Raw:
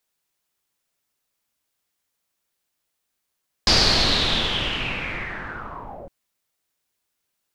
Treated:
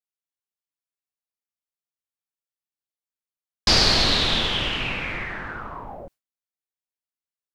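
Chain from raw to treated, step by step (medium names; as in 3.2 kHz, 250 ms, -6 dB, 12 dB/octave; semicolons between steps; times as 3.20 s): gate with hold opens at -32 dBFS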